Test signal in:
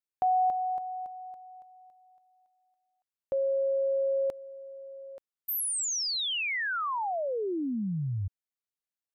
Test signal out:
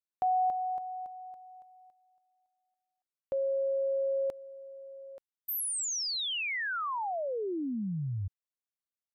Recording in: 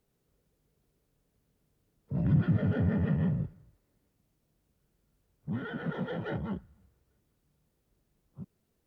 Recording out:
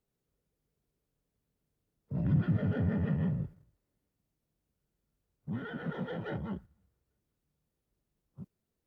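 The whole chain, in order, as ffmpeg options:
ffmpeg -i in.wav -af "agate=range=-6dB:threshold=-55dB:ratio=3:release=40:detection=rms,volume=-2.5dB" out.wav

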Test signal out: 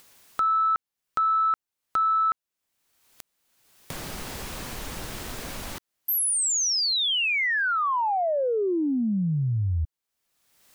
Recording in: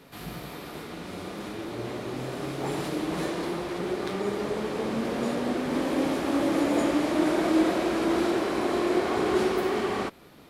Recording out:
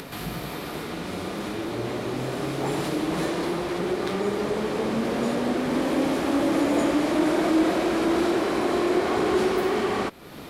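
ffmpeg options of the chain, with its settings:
ffmpeg -i in.wav -filter_complex "[0:a]asplit=2[link_01][link_02];[link_02]acompressor=threshold=-35dB:ratio=6,volume=-2dB[link_03];[link_01][link_03]amix=inputs=2:normalize=0,asoftclip=type=tanh:threshold=-13dB,acompressor=mode=upward:threshold=-33dB:ratio=2.5,volume=1.5dB" out.wav

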